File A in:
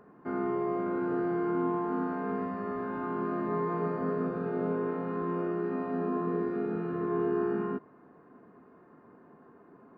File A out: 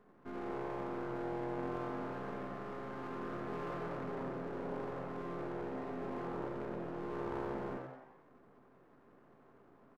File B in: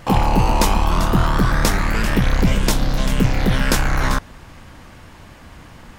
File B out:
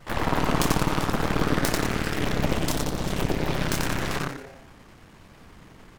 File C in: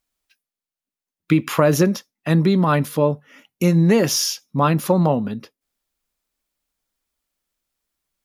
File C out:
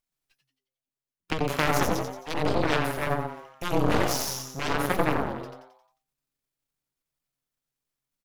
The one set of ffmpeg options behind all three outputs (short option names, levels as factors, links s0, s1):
-filter_complex "[0:a]aeval=exprs='if(lt(val(0),0),0.251*val(0),val(0))':c=same,asplit=7[s0][s1][s2][s3][s4][s5][s6];[s1]adelay=89,afreqshift=130,volume=0.501[s7];[s2]adelay=178,afreqshift=260,volume=0.251[s8];[s3]adelay=267,afreqshift=390,volume=0.126[s9];[s4]adelay=356,afreqshift=520,volume=0.0624[s10];[s5]adelay=445,afreqshift=650,volume=0.0313[s11];[s6]adelay=534,afreqshift=780,volume=0.0157[s12];[s0][s7][s8][s9][s10][s11][s12]amix=inputs=7:normalize=0,aeval=exprs='0.944*(cos(1*acos(clip(val(0)/0.944,-1,1)))-cos(1*PI/2))+0.237*(cos(8*acos(clip(val(0)/0.944,-1,1)))-cos(8*PI/2))':c=same,volume=0.531"